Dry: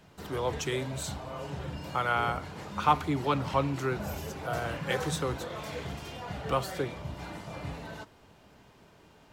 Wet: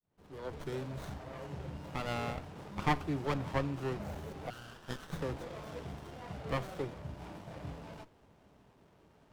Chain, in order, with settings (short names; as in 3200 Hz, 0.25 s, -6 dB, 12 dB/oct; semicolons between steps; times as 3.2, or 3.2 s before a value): opening faded in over 0.91 s; 4.5–5.13 steep high-pass 1300 Hz 48 dB/oct; running maximum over 17 samples; gain -5 dB